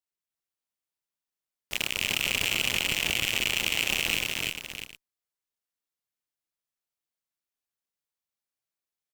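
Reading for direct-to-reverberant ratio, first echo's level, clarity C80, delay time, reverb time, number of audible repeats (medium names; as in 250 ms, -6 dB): no reverb, -16.0 dB, no reverb, 129 ms, no reverb, 4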